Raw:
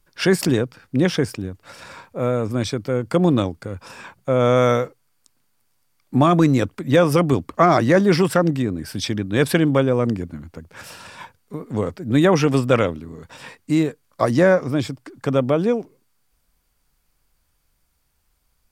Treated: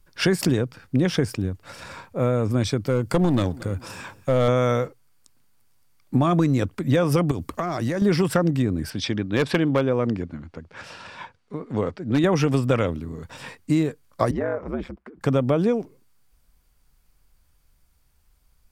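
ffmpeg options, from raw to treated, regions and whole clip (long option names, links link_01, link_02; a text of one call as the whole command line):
ffmpeg -i in.wav -filter_complex "[0:a]asettb=1/sr,asplit=3[link_01][link_02][link_03];[link_01]atrim=end=2.864[link_04];[link_02]atrim=start=2.86:end=4.48,asetpts=PTS-STARTPTS,afade=type=in:duration=0.004:curve=qsin,afade=type=out:start_time=1.616:duration=0.004:curve=qsin,highshelf=frequency=6200:gain=7,aeval=exprs='clip(val(0),-1,0.2)':channel_layout=same,aecho=1:1:229|458|687:0.0708|0.0361|0.0184,atrim=end_sample=71442[link_05];[link_03]atrim=start=4.476[link_06];[link_04][link_05]acrossfade=duration=0.004:curve1=hsin:curve2=qsin[link_07];[link_07][link_06]acrossfade=duration=0.004:curve1=qsin:curve2=hsin,asettb=1/sr,asplit=3[link_08][link_09][link_10];[link_08]atrim=end=7.314[link_11];[link_09]atrim=start=7.31:end=8.02,asetpts=PTS-STARTPTS,afade=type=in:duration=0.004:curve=qsin,afade=type=out:start_time=0.706:duration=0.004:curve=qsin,acompressor=threshold=-22dB:ratio=16:attack=3.2:release=140:knee=1:detection=peak,highshelf=frequency=5700:gain=9.5[link_12];[link_10]atrim=start=8.016[link_13];[link_11][link_12]acrossfade=duration=0.004:curve1=hsin:curve2=qsin[link_14];[link_14][link_13]acrossfade=duration=0.004:curve1=qsin:curve2=hsin,asettb=1/sr,asplit=3[link_15][link_16][link_17];[link_15]atrim=end=8.904[link_18];[link_16]atrim=start=8.9:end=12.24,asetpts=PTS-STARTPTS,afade=type=in:duration=0.004:curve=qsin,afade=type=out:start_time=3.336:duration=0.004:curve=qsin,lowpass=4700,aeval=exprs='0.422*(abs(mod(val(0)/0.422+3,4)-2)-1)':channel_layout=same,lowshelf=frequency=170:gain=-9.5[link_19];[link_17]atrim=start=12.236[link_20];[link_18][link_19]acrossfade=duration=0.004:curve1=hsin:curve2=qsin[link_21];[link_21][link_20]acrossfade=duration=0.004:curve1=qsin:curve2=hsin,asettb=1/sr,asplit=3[link_22][link_23][link_24];[link_22]atrim=end=14.314[link_25];[link_23]atrim=start=14.31:end=15.21,asetpts=PTS-STARTPTS,afade=type=in:duration=0.004:curve=qsin,afade=type=out:start_time=0.896:duration=0.004:curve=qsin,acrossover=split=220 2400:gain=0.2 1 0.0794[link_26][link_27][link_28];[link_26][link_27][link_28]amix=inputs=3:normalize=0,acompressor=threshold=-22dB:ratio=3:attack=3.2:release=140:knee=1:detection=peak,aeval=exprs='val(0)*sin(2*PI*70*n/s)':channel_layout=same[link_29];[link_24]atrim=start=15.206[link_30];[link_25][link_29]acrossfade=duration=0.004:curve1=hsin:curve2=qsin[link_31];[link_31][link_30]acrossfade=duration=0.004:curve1=qsin:curve2=hsin,lowshelf=frequency=130:gain=7.5,acompressor=threshold=-16dB:ratio=6" out.wav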